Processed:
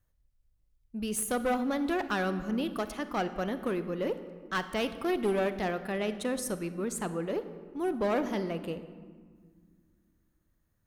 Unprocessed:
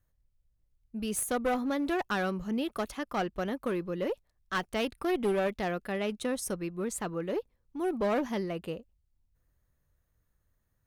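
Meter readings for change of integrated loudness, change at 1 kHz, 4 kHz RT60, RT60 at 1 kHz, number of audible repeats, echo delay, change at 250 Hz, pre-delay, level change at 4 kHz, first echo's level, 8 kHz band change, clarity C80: +0.5 dB, +0.5 dB, 0.95 s, 1.7 s, none, none, +0.5 dB, 37 ms, 0.0 dB, none, 0.0 dB, 13.0 dB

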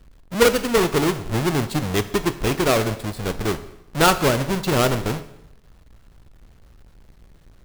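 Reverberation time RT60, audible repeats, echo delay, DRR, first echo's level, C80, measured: 0.80 s, none, none, 10.5 dB, none, 16.0 dB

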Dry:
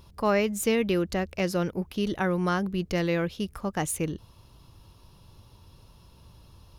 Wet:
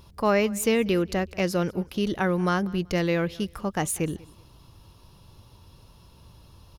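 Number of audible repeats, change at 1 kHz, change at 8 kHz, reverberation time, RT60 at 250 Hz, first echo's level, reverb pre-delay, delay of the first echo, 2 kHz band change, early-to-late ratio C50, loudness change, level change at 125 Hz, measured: 2, +2.0 dB, +2.0 dB, none, none, -23.0 dB, none, 0.19 s, +2.0 dB, none, +2.0 dB, +2.0 dB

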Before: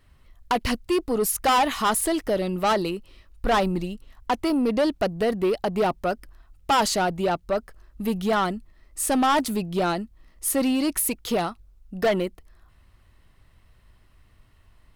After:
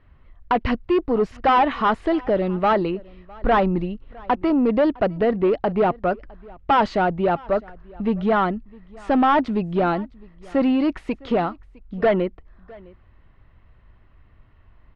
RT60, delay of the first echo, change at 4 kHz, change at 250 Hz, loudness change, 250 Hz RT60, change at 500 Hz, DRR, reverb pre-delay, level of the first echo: none, 0.658 s, -6.0 dB, +4.0 dB, +3.0 dB, none, +3.5 dB, none, none, -24.0 dB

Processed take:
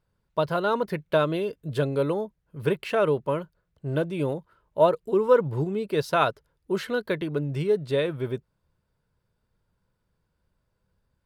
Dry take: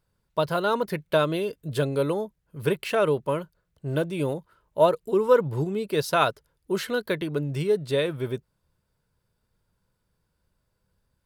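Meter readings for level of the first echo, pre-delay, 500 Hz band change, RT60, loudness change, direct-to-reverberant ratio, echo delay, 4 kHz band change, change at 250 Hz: none, none, 0.0 dB, none, -0.5 dB, none, none, -3.5 dB, 0.0 dB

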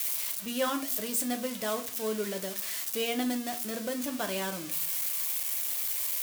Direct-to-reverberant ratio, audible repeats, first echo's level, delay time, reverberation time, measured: 5.5 dB, none, none, none, 0.40 s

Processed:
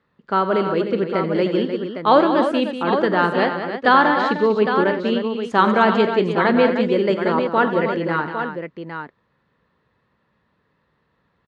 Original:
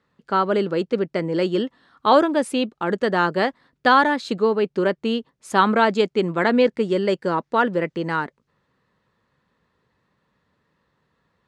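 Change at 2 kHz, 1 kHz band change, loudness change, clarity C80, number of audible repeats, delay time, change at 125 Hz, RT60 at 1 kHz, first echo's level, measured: +2.5 dB, +2.5 dB, +2.5 dB, none, 5, 47 ms, +2.5 dB, none, -16.5 dB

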